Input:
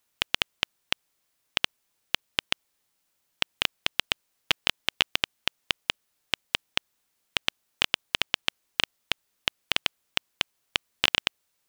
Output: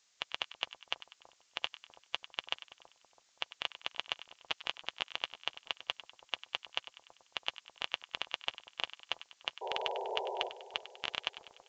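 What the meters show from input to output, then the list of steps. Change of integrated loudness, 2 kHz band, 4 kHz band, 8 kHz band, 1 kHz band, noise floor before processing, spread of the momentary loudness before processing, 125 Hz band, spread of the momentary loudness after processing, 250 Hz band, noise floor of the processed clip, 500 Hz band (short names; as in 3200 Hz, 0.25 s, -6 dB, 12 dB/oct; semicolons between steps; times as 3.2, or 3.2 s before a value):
-10.5 dB, -11.5 dB, -10.5 dB, -16.5 dB, -4.0 dB, -76 dBFS, 6 LU, -20.0 dB, 6 LU, -14.0 dB, -72 dBFS, -1.5 dB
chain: per-bin expansion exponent 2; bell 870 Hz +7.5 dB 1.8 oct; reverse; compressor 6:1, threshold -36 dBFS, peak gain reduction 18.5 dB; reverse; painted sound noise, 9.61–10.49, 370–1000 Hz -41 dBFS; added noise blue -65 dBFS; on a send: split-band echo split 1000 Hz, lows 0.329 s, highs 98 ms, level -14 dB; on the sum: downsampling 16000 Hz; gain +2.5 dB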